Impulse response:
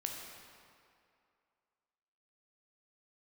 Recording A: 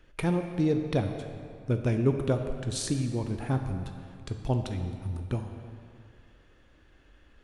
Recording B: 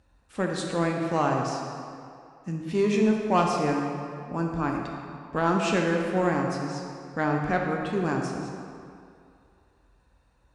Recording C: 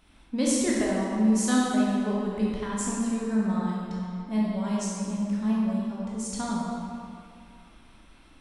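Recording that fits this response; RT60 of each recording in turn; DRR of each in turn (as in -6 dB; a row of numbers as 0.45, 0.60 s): B; 2.4, 2.4, 2.4 s; 5.5, 0.5, -6.0 dB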